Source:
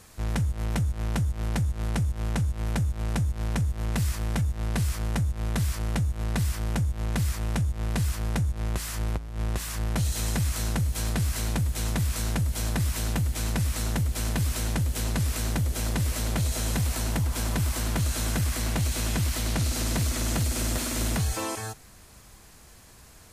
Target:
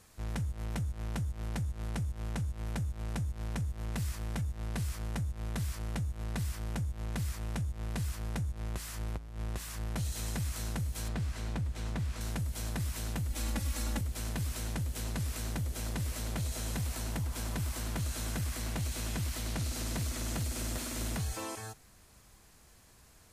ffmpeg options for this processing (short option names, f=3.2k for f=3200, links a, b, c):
-filter_complex "[0:a]asettb=1/sr,asplit=3[a][b][c];[a]atrim=end=11.084[d];[b]atrim=start=11.08:end=12.21,asetpts=PTS-STARTPTS,afade=t=in:d=0.004:c=qsin,afade=t=out:st=1.126:d=0.004:c=qsin,aemphasis=mode=reproduction:type=50fm[e];[c]atrim=start=12.206[f];[d][e]acrossfade=d=0.004:c1=hsin:c2=qsin[g];[g][f]acrossfade=d=0.004:c1=qsin:c2=hsin,asettb=1/sr,asplit=3[h][i][j];[h]atrim=end=13.304[k];[i]atrim=start=13.3:end=14.01,asetpts=PTS-STARTPTS,afade=t=in:d=0.004:c=qsin,afade=t=out:st=0.706:d=0.004:c=qsin,aecho=1:1:3.6:0.83,atrim=end_sample=31311[l];[j]atrim=start=14.006[m];[k][l]acrossfade=d=0.004:c1=hsin:c2=qsin[n];[n][m]acrossfade=d=0.004:c1=qsin:c2=hsin,volume=-8.5dB"